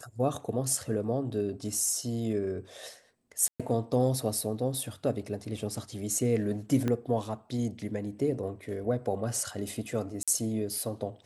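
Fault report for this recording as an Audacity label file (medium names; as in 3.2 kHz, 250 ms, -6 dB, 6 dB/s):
3.480000	3.600000	dropout 116 ms
6.880000	6.880000	pop -17 dBFS
10.230000	10.280000	dropout 46 ms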